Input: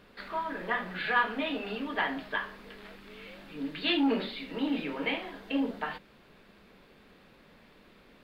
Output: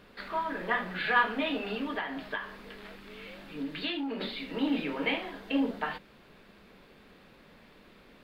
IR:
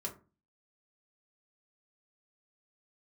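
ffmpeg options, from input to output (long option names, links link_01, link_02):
-filter_complex "[0:a]asettb=1/sr,asplit=3[link_01][link_02][link_03];[link_01]atrim=end=1.914[link_04];[link_02]atrim=start=1.91:end=4.21,asetpts=PTS-STARTPTS,afade=type=in:duration=0.004:curve=qsin,afade=type=out:start_time=2.296:duration=0.004:curve=qsin,acompressor=threshold=-32dB:ratio=12[link_05];[link_03]atrim=start=4.206[link_06];[link_04][link_05]acrossfade=duration=0.004:curve1=hsin:curve2=qsin[link_07];[link_07][link_06]acrossfade=duration=0.004:curve1=qsin:curve2=hsin,volume=1.5dB"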